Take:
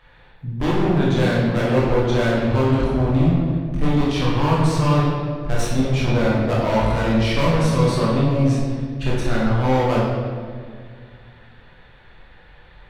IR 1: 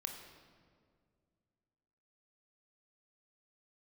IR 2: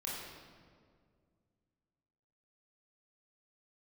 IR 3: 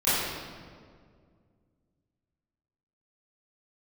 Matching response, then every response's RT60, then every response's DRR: 2; 2.1 s, 2.0 s, 2.0 s; 3.0 dB, -6.5 dB, -16.0 dB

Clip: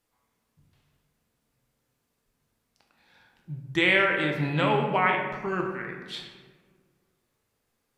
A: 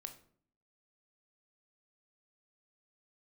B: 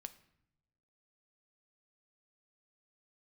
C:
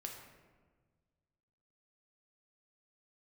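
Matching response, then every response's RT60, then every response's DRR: C; 0.55 s, no single decay rate, 1.5 s; 6.5 dB, 10.0 dB, 1.0 dB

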